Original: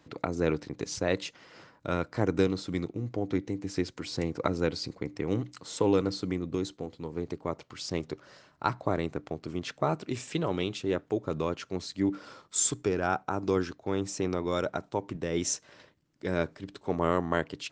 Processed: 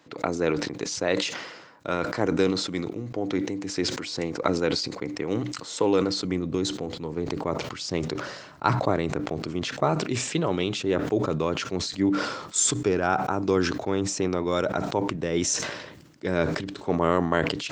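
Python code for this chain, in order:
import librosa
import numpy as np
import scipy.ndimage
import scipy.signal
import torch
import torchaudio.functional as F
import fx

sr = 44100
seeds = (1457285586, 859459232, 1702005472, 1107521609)

y = fx.highpass(x, sr, hz=fx.steps((0.0, 290.0), (6.25, 83.0)), slope=6)
y = fx.sustainer(y, sr, db_per_s=52.0)
y = y * 10.0 ** (4.5 / 20.0)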